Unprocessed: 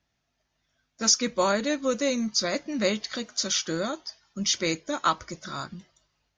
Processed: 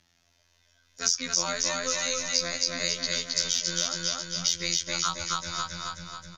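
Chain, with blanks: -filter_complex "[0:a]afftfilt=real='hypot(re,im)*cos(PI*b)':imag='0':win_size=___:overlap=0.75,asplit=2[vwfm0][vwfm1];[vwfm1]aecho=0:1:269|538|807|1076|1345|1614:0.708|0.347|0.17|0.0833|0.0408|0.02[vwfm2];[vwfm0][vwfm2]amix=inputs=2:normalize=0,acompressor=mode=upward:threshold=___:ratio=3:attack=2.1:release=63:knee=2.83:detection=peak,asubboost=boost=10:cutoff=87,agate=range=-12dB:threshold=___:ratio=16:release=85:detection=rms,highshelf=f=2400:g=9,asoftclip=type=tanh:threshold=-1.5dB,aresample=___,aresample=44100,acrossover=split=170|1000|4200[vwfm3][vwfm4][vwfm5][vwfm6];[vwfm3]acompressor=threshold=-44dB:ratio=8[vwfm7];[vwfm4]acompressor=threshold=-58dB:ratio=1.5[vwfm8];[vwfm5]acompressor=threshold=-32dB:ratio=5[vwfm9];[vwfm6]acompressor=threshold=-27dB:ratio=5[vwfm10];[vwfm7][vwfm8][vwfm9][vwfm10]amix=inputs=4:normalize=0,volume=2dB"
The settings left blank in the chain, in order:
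2048, -45dB, -50dB, 32000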